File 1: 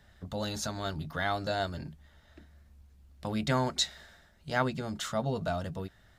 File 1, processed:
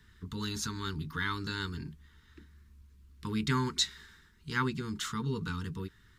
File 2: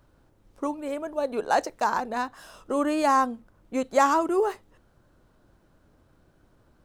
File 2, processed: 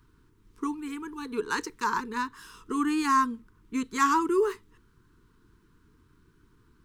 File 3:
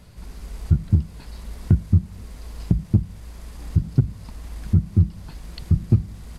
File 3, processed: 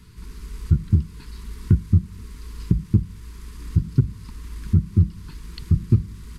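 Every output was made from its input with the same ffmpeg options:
-af "asuperstop=centerf=650:order=12:qfactor=1.4"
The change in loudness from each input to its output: -1.5 LU, -2.5 LU, 0.0 LU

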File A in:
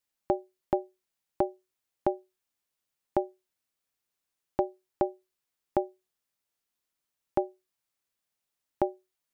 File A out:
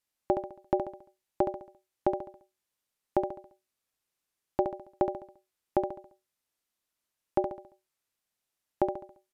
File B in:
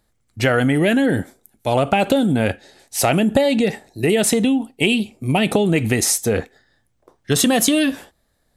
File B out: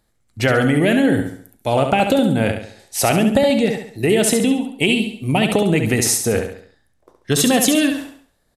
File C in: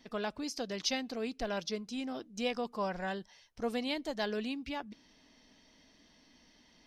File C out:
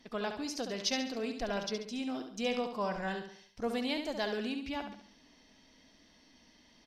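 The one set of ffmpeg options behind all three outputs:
-filter_complex "[0:a]asplit=2[s0][s1];[s1]aecho=0:1:69|138|207|276|345:0.447|0.188|0.0788|0.0331|0.0139[s2];[s0][s2]amix=inputs=2:normalize=0,aresample=32000,aresample=44100"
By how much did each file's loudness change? +0.5 LU, +1.0 LU, +1.0 LU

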